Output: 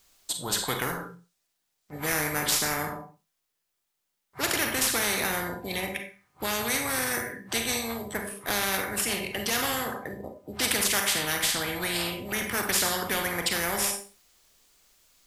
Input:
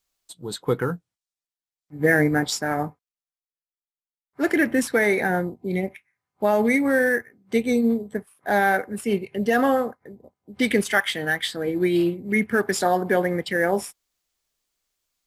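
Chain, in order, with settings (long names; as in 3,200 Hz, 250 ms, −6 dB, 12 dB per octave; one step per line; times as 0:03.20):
four-comb reverb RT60 0.34 s, combs from 31 ms, DRR 7 dB
every bin compressed towards the loudest bin 4 to 1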